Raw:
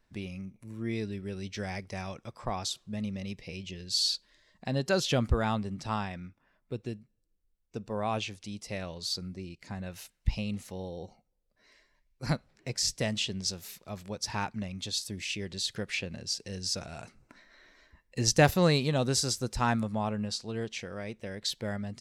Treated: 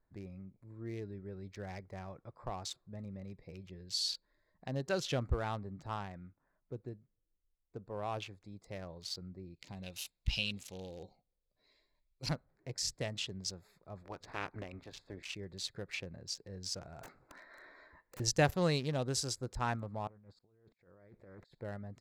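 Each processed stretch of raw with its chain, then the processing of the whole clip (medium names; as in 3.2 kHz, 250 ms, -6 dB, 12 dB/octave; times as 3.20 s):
9.56–12.29 s: resonant high shelf 2.2 kHz +10.5 dB, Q 3 + doubling 15 ms -13 dB
14.02–15.22 s: spectral peaks clipped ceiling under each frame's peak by 18 dB + low-pass 3.6 kHz
17.02–18.20 s: overdrive pedal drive 22 dB, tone 6 kHz, clips at -20.5 dBFS + integer overflow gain 32.5 dB
20.07–21.55 s: compressor with a negative ratio -46 dBFS + slow attack 725 ms + loudspeaker Doppler distortion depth 0.5 ms
whole clip: local Wiener filter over 15 samples; peaking EQ 220 Hz -9.5 dB 0.23 oct; trim -6.5 dB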